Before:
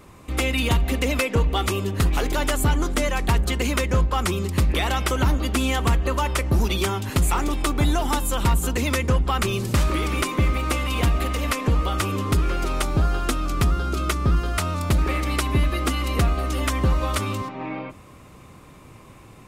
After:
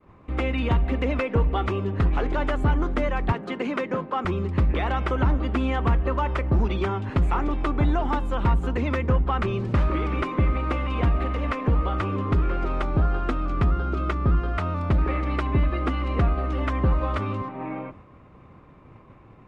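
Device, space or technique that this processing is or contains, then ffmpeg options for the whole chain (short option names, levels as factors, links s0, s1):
hearing-loss simulation: -filter_complex "[0:a]lowpass=1800,agate=range=0.0224:threshold=0.00708:ratio=3:detection=peak,asettb=1/sr,asplit=3[s0][s1][s2];[s0]atrim=end=3.324[s3];[s1]atrim=start=3.32:end=4.25,asetpts=PTS-STARTPTS,afade=t=in:d=0.004:c=qsin,afade=t=out:st=0.926:d=0.004:c=qsin,highpass=f=180:w=0.5412,highpass=f=180:w=1.3066[s4];[s2]atrim=start=4.246[s5];[s3][s4]acrossfade=d=0.004:c1=hsin:c2=qsin[s6];[s6][s5]acrossfade=d=0.004:c1=qsin:c2=hsin,volume=0.891"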